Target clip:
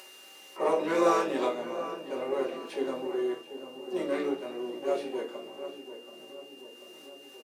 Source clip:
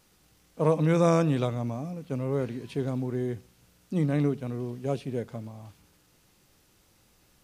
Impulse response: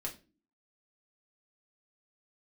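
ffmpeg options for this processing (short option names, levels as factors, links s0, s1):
-filter_complex "[0:a]asplit=2[s0][s1];[s1]adelay=736,lowpass=f=1500:p=1,volume=0.282,asplit=2[s2][s3];[s3]adelay=736,lowpass=f=1500:p=1,volume=0.49,asplit=2[s4][s5];[s5]adelay=736,lowpass=f=1500:p=1,volume=0.49,asplit=2[s6][s7];[s7]adelay=736,lowpass=f=1500:p=1,volume=0.49,asplit=2[s8][s9];[s9]adelay=736,lowpass=f=1500:p=1,volume=0.49[s10];[s0][s2][s4][s6][s8][s10]amix=inputs=6:normalize=0,asplit=4[s11][s12][s13][s14];[s12]asetrate=29433,aresample=44100,atempo=1.49831,volume=0.501[s15];[s13]asetrate=55563,aresample=44100,atempo=0.793701,volume=0.178[s16];[s14]asetrate=88200,aresample=44100,atempo=0.5,volume=0.2[s17];[s11][s15][s16][s17]amix=inputs=4:normalize=0,highpass=f=370:w=0.5412,highpass=f=370:w=1.3066[s18];[1:a]atrim=start_sample=2205,asetrate=41013,aresample=44100[s19];[s18][s19]afir=irnorm=-1:irlink=0,acompressor=mode=upward:threshold=0.00708:ratio=2.5,aeval=exprs='val(0)+0.00282*sin(2*PI*2800*n/s)':c=same"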